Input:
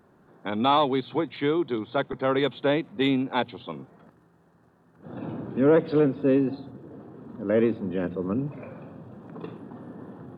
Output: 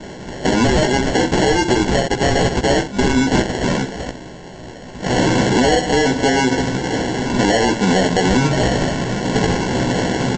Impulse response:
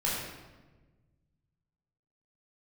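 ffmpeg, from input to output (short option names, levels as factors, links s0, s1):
-af "tiltshelf=f=740:g=-8.5,acompressor=threshold=0.0158:ratio=5,aresample=16000,acrusher=samples=13:mix=1:aa=0.000001,aresample=44100,aecho=1:1:16|64:0.596|0.266,alimiter=level_in=42.2:limit=0.891:release=50:level=0:latency=1,volume=0.531"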